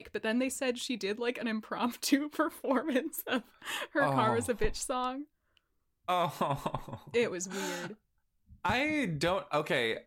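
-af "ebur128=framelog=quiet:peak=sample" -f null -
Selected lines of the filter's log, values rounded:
Integrated loudness:
  I:         -32.4 LUFS
  Threshold: -42.7 LUFS
Loudness range:
  LRA:         3.5 LU
  Threshold: -53.2 LUFS
  LRA low:   -35.2 LUFS
  LRA high:  -31.7 LUFS
Sample peak:
  Peak:      -14.3 dBFS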